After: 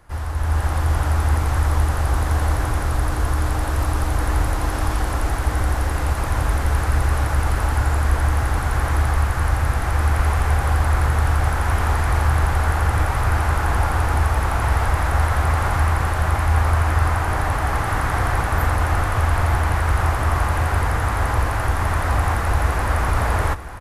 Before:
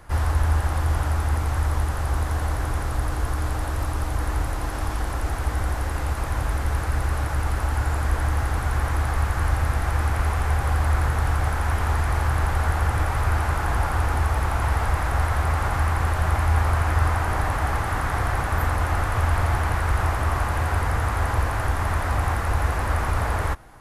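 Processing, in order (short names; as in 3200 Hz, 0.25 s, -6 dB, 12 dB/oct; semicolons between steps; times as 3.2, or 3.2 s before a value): AGC gain up to 11 dB; on a send: feedback echo 0.896 s, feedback 57%, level -15 dB; on the sum: gain -5 dB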